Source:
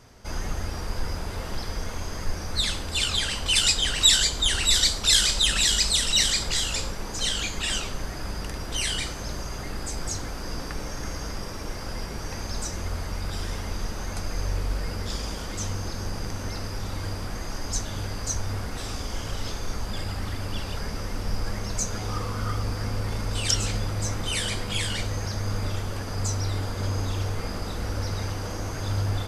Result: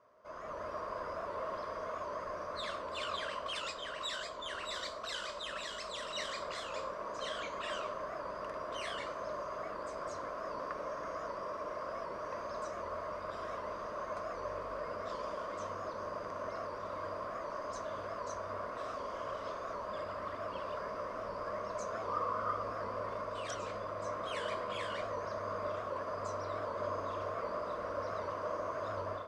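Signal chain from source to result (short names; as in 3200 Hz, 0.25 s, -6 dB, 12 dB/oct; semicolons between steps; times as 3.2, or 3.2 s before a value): AGC gain up to 8 dB; double band-pass 810 Hz, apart 0.78 oct; record warp 78 rpm, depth 100 cents; gain -1.5 dB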